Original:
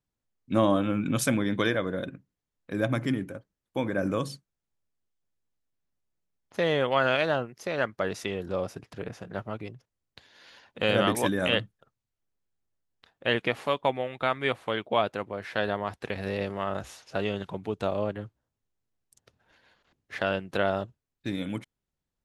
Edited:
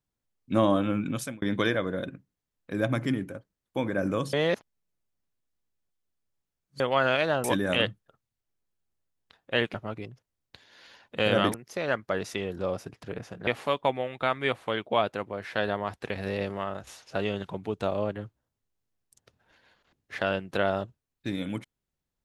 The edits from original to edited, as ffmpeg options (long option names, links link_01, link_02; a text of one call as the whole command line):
ffmpeg -i in.wav -filter_complex "[0:a]asplit=9[link_01][link_02][link_03][link_04][link_05][link_06][link_07][link_08][link_09];[link_01]atrim=end=1.42,asetpts=PTS-STARTPTS,afade=type=out:start_time=0.96:duration=0.46[link_10];[link_02]atrim=start=1.42:end=4.332,asetpts=PTS-STARTPTS,afade=type=in:duration=0.004:curve=hsin[link_11];[link_03]atrim=start=4.328:end=6.802,asetpts=PTS-STARTPTS,areverse[link_12];[link_04]atrim=start=6.798:end=7.442[link_13];[link_05]atrim=start=11.168:end=13.472[link_14];[link_06]atrim=start=9.368:end=11.172[link_15];[link_07]atrim=start=7.438:end=9.372[link_16];[link_08]atrim=start=13.468:end=16.87,asetpts=PTS-STARTPTS,afade=type=out:start_time=3.082:duration=0.32:silence=0.354813[link_17];[link_09]atrim=start=16.87,asetpts=PTS-STARTPTS,afade=type=in:duration=0.004:curve=hsin:silence=0.354813[link_18];[link_10][link_11]concat=n=2:v=0:a=1[link_19];[link_19][link_12]acrossfade=duration=0.004:curve1=hsin:curve2=hsin[link_20];[link_20][link_13]acrossfade=duration=0.004:curve1=hsin:curve2=hsin[link_21];[link_21][link_14]acrossfade=duration=0.004:curve1=hsin:curve2=hsin[link_22];[link_22][link_15]acrossfade=duration=0.004:curve1=hsin:curve2=hsin[link_23];[link_23][link_16]acrossfade=duration=0.004:curve1=hsin:curve2=hsin[link_24];[link_17][link_18]concat=n=2:v=0:a=1[link_25];[link_24][link_25]acrossfade=duration=0.004:curve1=hsin:curve2=hsin" out.wav